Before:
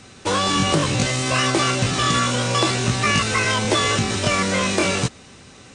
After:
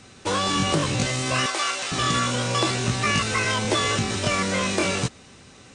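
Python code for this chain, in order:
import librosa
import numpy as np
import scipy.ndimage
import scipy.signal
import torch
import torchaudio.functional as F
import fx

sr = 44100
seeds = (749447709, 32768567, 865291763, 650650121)

y = fx.highpass(x, sr, hz=710.0, slope=12, at=(1.46, 1.92))
y = y * 10.0 ** (-3.5 / 20.0)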